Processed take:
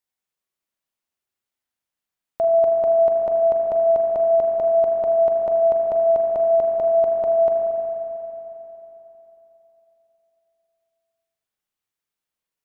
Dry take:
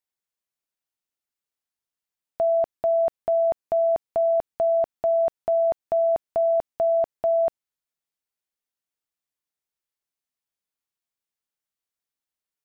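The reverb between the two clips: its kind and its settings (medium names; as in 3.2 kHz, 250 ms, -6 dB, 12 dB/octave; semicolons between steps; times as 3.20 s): spring tank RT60 3.5 s, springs 37/45 ms, chirp 50 ms, DRR 0 dB; trim +1.5 dB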